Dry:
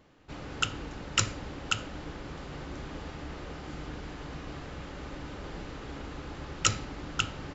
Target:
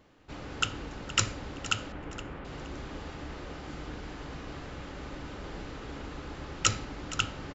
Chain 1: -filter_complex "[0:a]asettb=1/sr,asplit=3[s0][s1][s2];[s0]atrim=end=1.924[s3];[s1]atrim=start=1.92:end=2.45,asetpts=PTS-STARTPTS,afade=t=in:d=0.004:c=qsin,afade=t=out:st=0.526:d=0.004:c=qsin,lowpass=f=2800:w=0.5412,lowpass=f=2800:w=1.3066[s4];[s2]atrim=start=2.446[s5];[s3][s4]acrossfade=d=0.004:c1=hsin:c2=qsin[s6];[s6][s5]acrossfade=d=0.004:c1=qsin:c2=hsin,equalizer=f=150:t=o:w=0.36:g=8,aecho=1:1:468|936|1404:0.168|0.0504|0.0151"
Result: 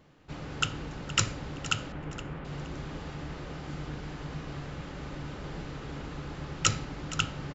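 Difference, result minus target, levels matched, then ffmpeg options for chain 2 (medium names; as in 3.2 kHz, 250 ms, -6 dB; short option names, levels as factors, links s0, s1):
125 Hz band +3.5 dB
-filter_complex "[0:a]asettb=1/sr,asplit=3[s0][s1][s2];[s0]atrim=end=1.924[s3];[s1]atrim=start=1.92:end=2.45,asetpts=PTS-STARTPTS,afade=t=in:d=0.004:c=qsin,afade=t=out:st=0.526:d=0.004:c=qsin,lowpass=f=2800:w=0.5412,lowpass=f=2800:w=1.3066[s4];[s2]atrim=start=2.446[s5];[s3][s4]acrossfade=d=0.004:c1=hsin:c2=qsin[s6];[s6][s5]acrossfade=d=0.004:c1=qsin:c2=hsin,equalizer=f=150:t=o:w=0.36:g=-3,aecho=1:1:468|936|1404:0.168|0.0504|0.0151"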